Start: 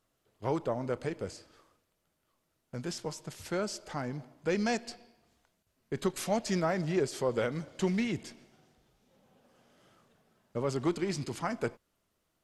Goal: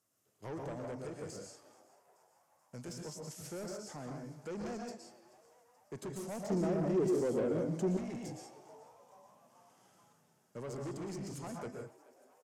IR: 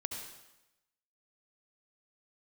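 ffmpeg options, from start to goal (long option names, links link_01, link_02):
-filter_complex "[0:a]acrossover=split=990[link_01][link_02];[link_02]acompressor=threshold=-48dB:ratio=6[link_03];[link_01][link_03]amix=inputs=2:normalize=0,highpass=frequency=94:width=0.5412,highpass=frequency=94:width=1.3066[link_04];[1:a]atrim=start_sample=2205,afade=type=out:start_time=0.17:duration=0.01,atrim=end_sample=7938,asetrate=26901,aresample=44100[link_05];[link_04][link_05]afir=irnorm=-1:irlink=0,aexciter=amount=4:drive=6.9:freq=5400,highshelf=frequency=9700:gain=-12,asoftclip=type=tanh:threshold=-30.5dB,asettb=1/sr,asplit=3[link_06][link_07][link_08];[link_06]atrim=end=6.504[link_09];[link_07]atrim=start=6.5:end=7.97,asetpts=PTS-STARTPTS,afade=type=in:duration=0.004:curve=qsin,afade=type=out:start_time=1.466:duration=0.004:curve=qsin,equalizer=frequency=300:width=0.69:gain=13[link_10];[link_08]atrim=start=7.966[link_11];[link_09][link_10]acrossfade=duration=0.004:curve1=hsin:curve2=qsin[link_12];[link_12][link_11]acrossfade=duration=0.004:curve1=qsin:curve2=hsin,asplit=6[link_13][link_14][link_15][link_16][link_17][link_18];[link_14]adelay=431,afreqshift=130,volume=-21dB[link_19];[link_15]adelay=862,afreqshift=260,volume=-25.6dB[link_20];[link_16]adelay=1293,afreqshift=390,volume=-30.2dB[link_21];[link_17]adelay=1724,afreqshift=520,volume=-34.7dB[link_22];[link_18]adelay=2155,afreqshift=650,volume=-39.3dB[link_23];[link_13][link_19][link_20][link_21][link_22][link_23]amix=inputs=6:normalize=0,volume=-7dB"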